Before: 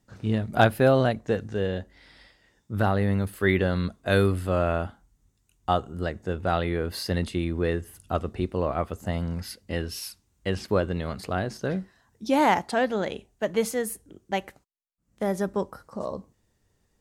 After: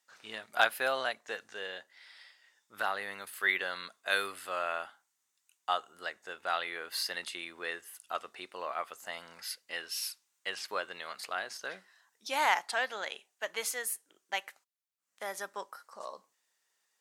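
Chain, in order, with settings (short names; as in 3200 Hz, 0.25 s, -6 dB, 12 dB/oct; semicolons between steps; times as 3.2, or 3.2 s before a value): HPF 1200 Hz 12 dB/oct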